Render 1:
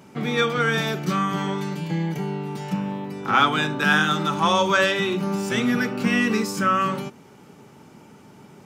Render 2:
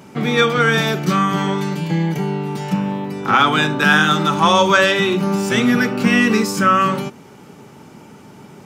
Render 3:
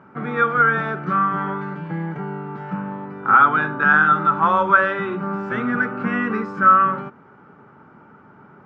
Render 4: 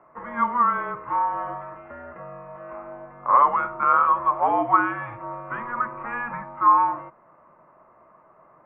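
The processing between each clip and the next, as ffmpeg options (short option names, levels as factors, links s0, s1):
-af "alimiter=level_in=2.37:limit=0.891:release=50:level=0:latency=1,volume=0.891"
-af "lowpass=f=1400:t=q:w=3.9,volume=0.376"
-af "highpass=f=530:t=q:w=0.5412,highpass=f=530:t=q:w=1.307,lowpass=f=2700:t=q:w=0.5176,lowpass=f=2700:t=q:w=0.7071,lowpass=f=2700:t=q:w=1.932,afreqshift=-250,volume=0.668"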